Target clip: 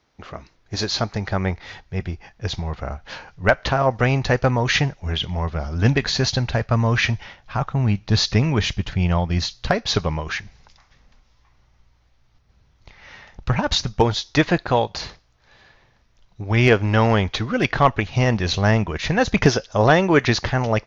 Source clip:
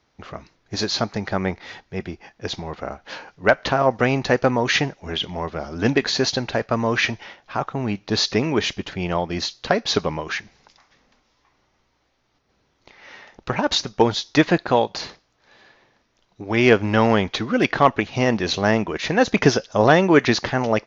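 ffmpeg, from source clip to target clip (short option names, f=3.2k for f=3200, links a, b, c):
-af "asubboost=boost=9:cutoff=110"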